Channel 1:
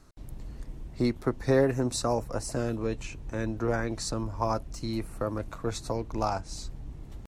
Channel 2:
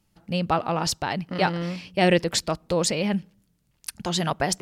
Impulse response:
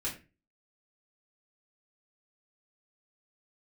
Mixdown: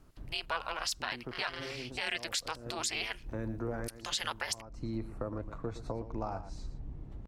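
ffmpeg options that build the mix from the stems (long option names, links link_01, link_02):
-filter_complex "[0:a]lowpass=frequency=1200:poles=1,acompressor=threshold=-31dB:ratio=3,volume=-2.5dB,asplit=2[link_01][link_02];[link_02]volume=-12.5dB[link_03];[1:a]highpass=1400,aeval=exprs='val(0)*sin(2*PI*160*n/s)':channel_layout=same,volume=1.5dB,asplit=2[link_04][link_05];[link_05]apad=whole_len=320975[link_06];[link_01][link_06]sidechaincompress=threshold=-49dB:ratio=8:attack=6.4:release=147[link_07];[link_03]aecho=0:1:116:1[link_08];[link_07][link_04][link_08]amix=inputs=3:normalize=0,alimiter=limit=-21dB:level=0:latency=1:release=64"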